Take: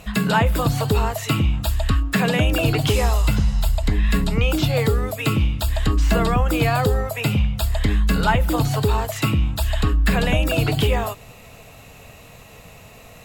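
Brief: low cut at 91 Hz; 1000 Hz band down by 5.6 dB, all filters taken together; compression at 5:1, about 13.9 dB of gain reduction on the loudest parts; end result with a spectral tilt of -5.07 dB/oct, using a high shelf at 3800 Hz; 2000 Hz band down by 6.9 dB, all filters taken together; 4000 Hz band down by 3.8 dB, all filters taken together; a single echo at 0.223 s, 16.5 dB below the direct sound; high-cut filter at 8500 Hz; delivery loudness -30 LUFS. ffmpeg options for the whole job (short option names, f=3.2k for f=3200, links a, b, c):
-af "highpass=91,lowpass=8.5k,equalizer=f=1k:t=o:g=-6,equalizer=f=2k:t=o:g=-8,highshelf=f=3.8k:g=7,equalizer=f=4k:t=o:g=-5.5,acompressor=threshold=-33dB:ratio=5,aecho=1:1:223:0.15,volume=6dB"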